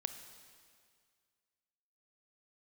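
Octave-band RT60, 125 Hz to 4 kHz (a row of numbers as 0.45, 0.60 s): 2.1, 2.0, 2.0, 2.0, 2.0, 1.9 s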